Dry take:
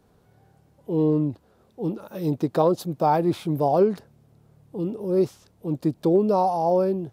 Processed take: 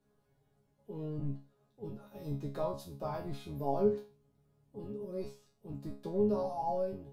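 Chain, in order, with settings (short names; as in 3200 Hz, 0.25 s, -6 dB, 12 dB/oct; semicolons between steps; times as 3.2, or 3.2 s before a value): octaver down 1 oct, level -1 dB; resonator bank C#3 fifth, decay 0.34 s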